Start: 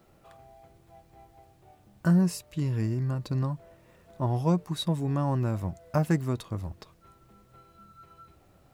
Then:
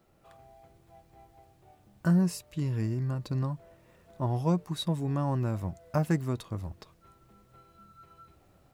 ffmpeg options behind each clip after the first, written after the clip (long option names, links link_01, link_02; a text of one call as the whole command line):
ffmpeg -i in.wav -af "dynaudnorm=framelen=150:gausssize=3:maxgain=4dB,volume=-6dB" out.wav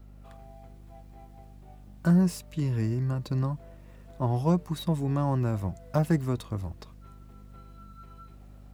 ffmpeg -i in.wav -filter_complex "[0:a]aeval=exprs='val(0)+0.00316*(sin(2*PI*50*n/s)+sin(2*PI*2*50*n/s)/2+sin(2*PI*3*50*n/s)/3+sin(2*PI*4*50*n/s)/4+sin(2*PI*5*50*n/s)/5)':channel_layout=same,acrossover=split=350|1100[link_01][link_02][link_03];[link_03]asoftclip=type=hard:threshold=-39.5dB[link_04];[link_01][link_02][link_04]amix=inputs=3:normalize=0,volume=2.5dB" out.wav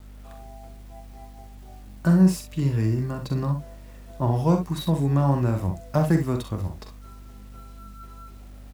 ffmpeg -i in.wav -af "aecho=1:1:43|64:0.422|0.355,acrusher=bits=9:mix=0:aa=0.000001,volume=3.5dB" out.wav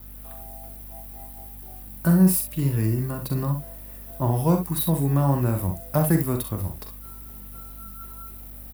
ffmpeg -i in.wav -af "aexciter=amount=10.7:drive=3.5:freq=9400" out.wav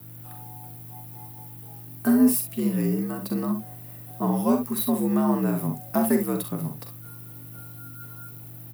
ffmpeg -i in.wav -af "afreqshift=67,volume=-1.5dB" out.wav